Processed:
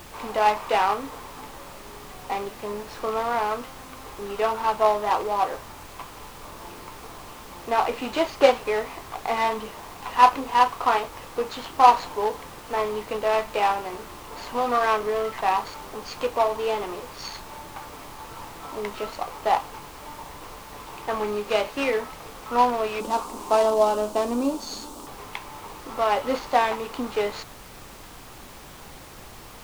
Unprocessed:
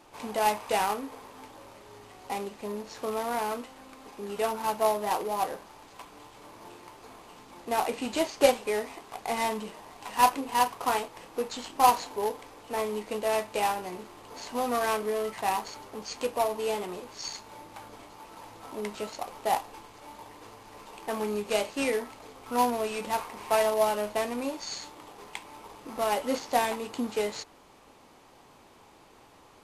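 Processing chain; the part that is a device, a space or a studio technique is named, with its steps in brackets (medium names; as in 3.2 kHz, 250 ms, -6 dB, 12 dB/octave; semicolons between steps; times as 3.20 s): horn gramophone (band-pass 270–4200 Hz; peaking EQ 1.2 kHz +5 dB 0.59 oct; wow and flutter 22 cents; pink noise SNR 18 dB); 23.00–25.07 s: graphic EQ 125/250/2000/8000 Hz -10/+11/-11/+7 dB; trim +4.5 dB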